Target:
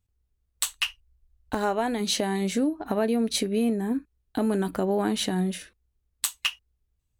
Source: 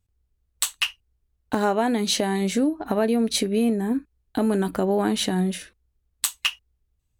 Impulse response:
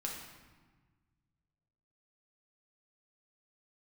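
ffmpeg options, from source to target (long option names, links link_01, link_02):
-filter_complex "[0:a]asplit=3[link_01][link_02][link_03];[link_01]afade=type=out:start_time=0.64:duration=0.02[link_04];[link_02]asubboost=boost=9.5:cutoff=78,afade=type=in:start_time=0.64:duration=0.02,afade=type=out:start_time=1.99:duration=0.02[link_05];[link_03]afade=type=in:start_time=1.99:duration=0.02[link_06];[link_04][link_05][link_06]amix=inputs=3:normalize=0,volume=-3dB"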